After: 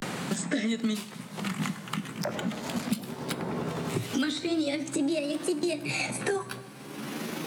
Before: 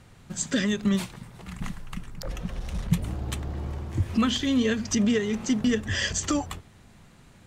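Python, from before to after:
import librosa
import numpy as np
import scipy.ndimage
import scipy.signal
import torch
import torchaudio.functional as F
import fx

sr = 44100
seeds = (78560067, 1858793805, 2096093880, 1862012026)

y = fx.pitch_glide(x, sr, semitones=7.0, runs='starting unshifted')
y = scipy.signal.sosfilt(scipy.signal.butter(4, 150.0, 'highpass', fs=sr, output='sos'), y)
y = fx.rev_double_slope(y, sr, seeds[0], early_s=0.72, late_s=2.6, knee_db=-18, drr_db=13.5)
y = fx.vibrato(y, sr, rate_hz=0.42, depth_cents=97.0)
y = fx.band_squash(y, sr, depth_pct=100)
y = y * 10.0 ** (-2.5 / 20.0)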